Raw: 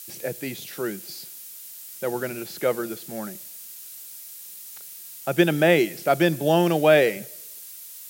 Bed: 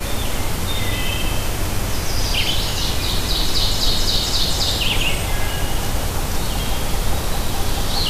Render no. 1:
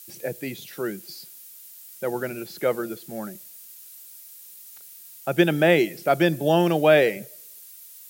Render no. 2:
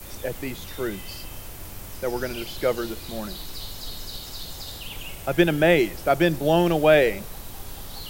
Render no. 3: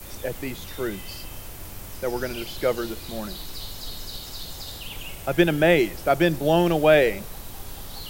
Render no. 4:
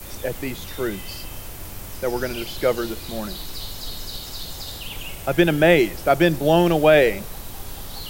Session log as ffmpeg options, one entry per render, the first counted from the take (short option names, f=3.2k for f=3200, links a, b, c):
-af "afftdn=nr=6:nf=-41"
-filter_complex "[1:a]volume=-18dB[a];[0:a][a]amix=inputs=2:normalize=0"
-af anull
-af "volume=3dB,alimiter=limit=-3dB:level=0:latency=1"